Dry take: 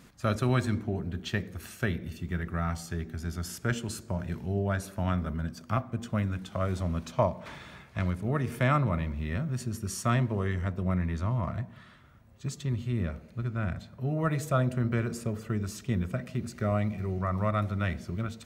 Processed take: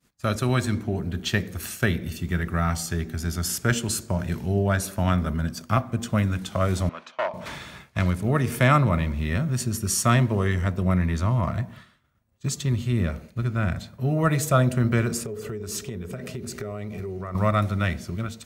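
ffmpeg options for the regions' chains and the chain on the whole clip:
ffmpeg -i in.wav -filter_complex "[0:a]asettb=1/sr,asplit=3[link_01][link_02][link_03];[link_01]atrim=end=6.894[link_04];[link_02]atrim=start=6.89:end=7.34,asetpts=PTS-STARTPTS,afade=type=in:duration=0.004:curve=qsin,afade=type=out:start_time=0.446:duration=0.004:curve=qsin,asoftclip=type=hard:threshold=-23.5dB,highpass=680,lowpass=2600[link_05];[link_03]atrim=start=7.336[link_06];[link_04][link_05]acrossfade=duration=0.004:curve1=hsin:curve2=qsin[link_07];[link_07][link_06]acrossfade=duration=0.004:curve1=qsin:curve2=hsin,asettb=1/sr,asplit=3[link_08][link_09][link_10];[link_08]atrim=end=15.254[link_11];[link_09]atrim=start=15.25:end=17.35,asetpts=PTS-STARTPTS,afade=type=in:duration=0.004:curve=qsin,afade=type=out:start_time=2.096:duration=0.004:curve=qsin,equalizer=frequency=420:width=4.6:gain=15,acompressor=threshold=-36dB:ratio=8:attack=3.2:release=140:knee=1:detection=peak[link_12];[link_10]atrim=start=17.346[link_13];[link_11][link_12]acrossfade=duration=0.004:curve1=hsin:curve2=qsin[link_14];[link_14][link_13]acrossfade=duration=0.004:curve1=qsin:curve2=hsin,agate=range=-33dB:threshold=-44dB:ratio=3:detection=peak,highshelf=frequency=4000:gain=8,dynaudnorm=framelen=270:gausssize=7:maxgain=4dB,volume=2.5dB" out.wav

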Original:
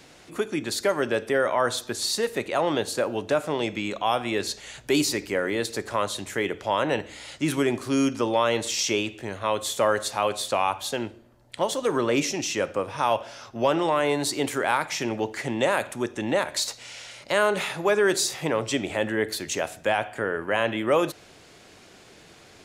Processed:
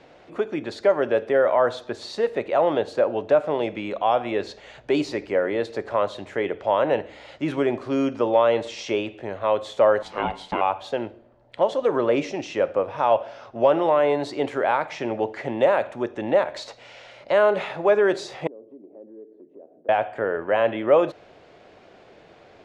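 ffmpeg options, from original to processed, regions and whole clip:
ffmpeg -i in.wav -filter_complex "[0:a]asettb=1/sr,asplit=3[link_01][link_02][link_03];[link_01]atrim=end=10.024[link_04];[link_02]atrim=start=10.02:end=10.61,asetpts=PTS-STARTPTS,afade=type=in:duration=0.004:curve=qsin,afade=type=out:start_time=0.586:duration=0.004:curve=qsin,equalizer=frequency=2400:width=4.5:gain=6.5,aeval=exprs='val(0)*sin(2*PI*340*n/s)':channel_layout=same[link_05];[link_03]atrim=start=10.606[link_06];[link_04][link_05]acrossfade=duration=0.004:curve1=hsin:curve2=qsin[link_07];[link_07][link_06]acrossfade=duration=0.004:curve1=qsin:curve2=hsin,asettb=1/sr,asplit=3[link_08][link_09][link_10];[link_08]atrim=end=18.474[link_11];[link_09]atrim=start=18.47:end=19.89,asetpts=PTS-STARTPTS,afade=type=in:duration=0.004:curve=qsin,afade=type=out:start_time=1.416:duration=0.004:curve=qsin,asuperpass=centerf=320:order=4:qfactor=1.5,acompressor=threshold=-50dB:ratio=2.5:attack=3.2:release=140:knee=1:detection=peak[link_12];[link_10]atrim=start=19.886[link_13];[link_11][link_12]acrossfade=duration=0.004:curve1=hsin:curve2=qsin[link_14];[link_14][link_13]acrossfade=duration=0.004:curve1=qsin:curve2=hsin,lowpass=3200,equalizer=frequency=600:width=1.1:gain=9.5,volume=-3dB" out.wav

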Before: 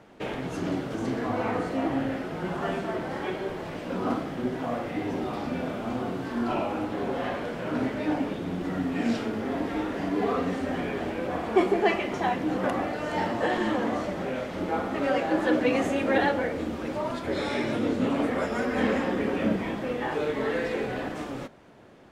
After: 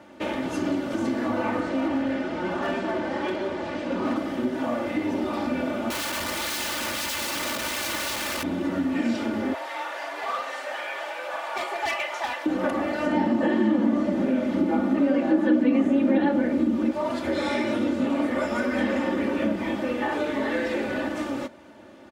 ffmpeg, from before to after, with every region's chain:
ffmpeg -i in.wav -filter_complex "[0:a]asettb=1/sr,asplit=3[link_01][link_02][link_03];[link_01]atrim=end=1.604[link_04];[link_02]atrim=start=1.6:end=4.16,asetpts=PTS-STARTPTS,afade=type=in:duration=0.004:curve=qsin,afade=type=out:start_time=2.556:duration=0.004:curve=qsin,lowpass=6500,asoftclip=type=hard:threshold=-25.5dB[link_05];[link_03]atrim=start=4.156[link_06];[link_04][link_05]acrossfade=duration=0.004:curve1=hsin:curve2=qsin[link_07];[link_07][link_06]acrossfade=duration=0.004:curve1=qsin:curve2=hsin,asettb=1/sr,asplit=3[link_08][link_09][link_10];[link_08]atrim=end=5.904[link_11];[link_09]atrim=start=5.9:end=8.43,asetpts=PTS-STARTPTS,afade=type=in:duration=0.004:curve=qsin,afade=type=out:start_time=2.526:duration=0.004:curve=qsin,highpass=frequency=130:poles=1,equalizer=frequency=390:width=4.1:gain=13.5,aeval=exprs='(mod(28.2*val(0)+1,2)-1)/28.2':channel_layout=same[link_12];[link_10]atrim=start=8.426[link_13];[link_11][link_12]acrossfade=duration=0.004:curve1=hsin:curve2=qsin[link_14];[link_14][link_13]acrossfade=duration=0.004:curve1=qsin:curve2=hsin,asettb=1/sr,asplit=3[link_15][link_16][link_17];[link_15]atrim=end=9.544[link_18];[link_16]atrim=start=9.54:end=12.46,asetpts=PTS-STARTPTS,afade=type=in:duration=0.004:curve=qsin,afade=type=out:start_time=2.916:duration=0.004:curve=qsin,highpass=frequency=670:width=0.5412,highpass=frequency=670:width=1.3066,volume=27dB,asoftclip=hard,volume=-27dB[link_19];[link_17]atrim=start=12.456[link_20];[link_18][link_19]acrossfade=duration=0.004:curve1=hsin:curve2=qsin[link_21];[link_21][link_20]acrossfade=duration=0.004:curve1=qsin:curve2=hsin,asettb=1/sr,asplit=3[link_22][link_23][link_24];[link_22]atrim=end=13.064[link_25];[link_23]atrim=start=13.06:end=16.91,asetpts=PTS-STARTPTS,afade=type=in:duration=0.004:curve=qsin,afade=type=out:start_time=3.846:duration=0.004:curve=qsin,acrossover=split=3800[link_26][link_27];[link_27]acompressor=threshold=-52dB:ratio=4:attack=1:release=60[link_28];[link_26][link_28]amix=inputs=2:normalize=0,equalizer=frequency=230:width_type=o:width=1.3:gain=14[link_29];[link_24]atrim=start=16.906[link_30];[link_25][link_29]acrossfade=duration=0.004:curve1=hsin:curve2=qsin[link_31];[link_31][link_30]acrossfade=duration=0.004:curve1=qsin:curve2=hsin,highpass=80,aecho=1:1:3.4:0.74,acompressor=threshold=-26dB:ratio=2.5,volume=3dB" out.wav

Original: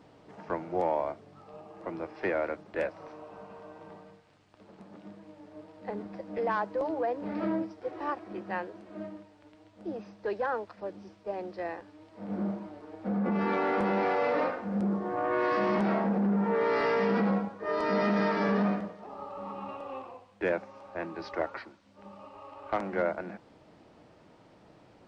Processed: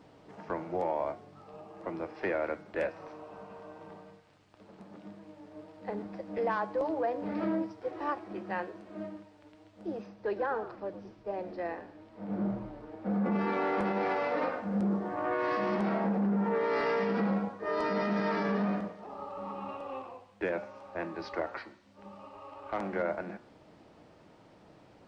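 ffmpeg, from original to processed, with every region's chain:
ffmpeg -i in.wav -filter_complex "[0:a]asettb=1/sr,asplit=3[link_01][link_02][link_03];[link_01]atrim=end=10.064[link_04];[link_02]atrim=start=10.06:end=13.1,asetpts=PTS-STARTPTS,afade=type=in:duration=0.004:curve=qsin,afade=type=out:start_time=3.036:duration=0.004:curve=qsin,highshelf=frequency=4700:gain=-8.5,asplit=4[link_05][link_06][link_07][link_08];[link_06]adelay=112,afreqshift=-81,volume=-13dB[link_09];[link_07]adelay=224,afreqshift=-162,volume=-22.9dB[link_10];[link_08]adelay=336,afreqshift=-243,volume=-32.8dB[link_11];[link_05][link_09][link_10][link_11]amix=inputs=4:normalize=0,atrim=end_sample=134064[link_12];[link_03]atrim=start=13.096[link_13];[link_04][link_12]acrossfade=duration=0.004:curve1=hsin:curve2=qsin[link_14];[link_14][link_13]acrossfade=duration=0.004:curve1=qsin:curve2=hsin,bandreject=frequency=120.9:width_type=h:width=4,bandreject=frequency=241.8:width_type=h:width=4,bandreject=frequency=362.7:width_type=h:width=4,bandreject=frequency=483.6:width_type=h:width=4,bandreject=frequency=604.5:width_type=h:width=4,bandreject=frequency=725.4:width_type=h:width=4,bandreject=frequency=846.3:width_type=h:width=4,bandreject=frequency=967.2:width_type=h:width=4,bandreject=frequency=1088.1:width_type=h:width=4,bandreject=frequency=1209:width_type=h:width=4,bandreject=frequency=1329.9:width_type=h:width=4,bandreject=frequency=1450.8:width_type=h:width=4,bandreject=frequency=1571.7:width_type=h:width=4,bandreject=frequency=1692.6:width_type=h:width=4,bandreject=frequency=1813.5:width_type=h:width=4,bandreject=frequency=1934.4:width_type=h:width=4,bandreject=frequency=2055.3:width_type=h:width=4,bandreject=frequency=2176.2:width_type=h:width=4,bandreject=frequency=2297.1:width_type=h:width=4,bandreject=frequency=2418:width_type=h:width=4,bandreject=frequency=2538.9:width_type=h:width=4,bandreject=frequency=2659.8:width_type=h:width=4,bandreject=frequency=2780.7:width_type=h:width=4,bandreject=frequency=2901.6:width_type=h:width=4,bandreject=frequency=3022.5:width_type=h:width=4,bandreject=frequency=3143.4:width_type=h:width=4,bandreject=frequency=3264.3:width_type=h:width=4,bandreject=frequency=3385.2:width_type=h:width=4,bandreject=frequency=3506.1:width_type=h:width=4,bandreject=frequency=3627:width_type=h:width=4,bandreject=frequency=3747.9:width_type=h:width=4,bandreject=frequency=3868.8:width_type=h:width=4,bandreject=frequency=3989.7:width_type=h:width=4,bandreject=frequency=4110.6:width_type=h:width=4,bandreject=frequency=4231.5:width_type=h:width=4,bandreject=frequency=4352.4:width_type=h:width=4,bandreject=frequency=4473.3:width_type=h:width=4,bandreject=frequency=4594.2:width_type=h:width=4,bandreject=frequency=4715.1:width_type=h:width=4,bandreject=frequency=4836:width_type=h:width=4,alimiter=limit=-22dB:level=0:latency=1" out.wav

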